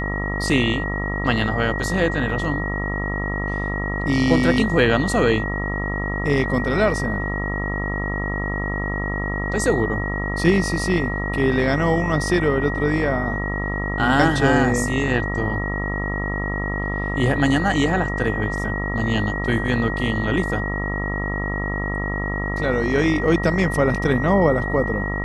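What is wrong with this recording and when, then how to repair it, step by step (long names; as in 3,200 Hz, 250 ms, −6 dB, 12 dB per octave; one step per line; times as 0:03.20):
mains buzz 50 Hz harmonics 27 −26 dBFS
whistle 1,900 Hz −27 dBFS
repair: notch filter 1,900 Hz, Q 30
hum removal 50 Hz, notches 27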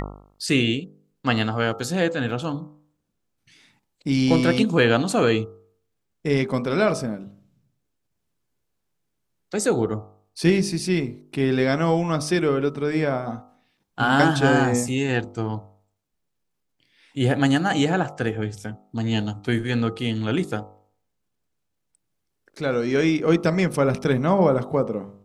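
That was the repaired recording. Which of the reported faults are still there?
none of them is left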